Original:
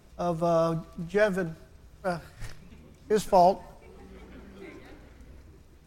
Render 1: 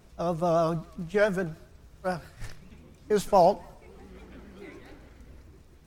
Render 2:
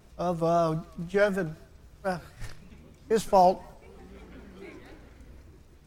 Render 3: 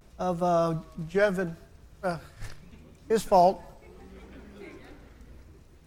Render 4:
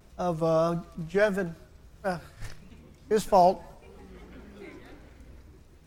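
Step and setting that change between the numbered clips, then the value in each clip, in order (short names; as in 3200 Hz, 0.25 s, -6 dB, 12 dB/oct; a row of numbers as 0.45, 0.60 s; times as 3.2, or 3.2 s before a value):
vibrato, rate: 7.2, 3.9, 0.73, 1.6 Hz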